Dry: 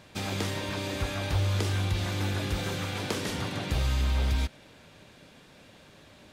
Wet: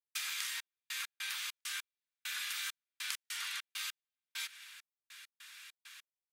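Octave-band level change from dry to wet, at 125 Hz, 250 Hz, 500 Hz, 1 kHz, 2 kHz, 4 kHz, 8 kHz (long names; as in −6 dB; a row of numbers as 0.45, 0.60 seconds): below −40 dB, below −40 dB, below −40 dB, −14.5 dB, −4.5 dB, −4.0 dB, −0.5 dB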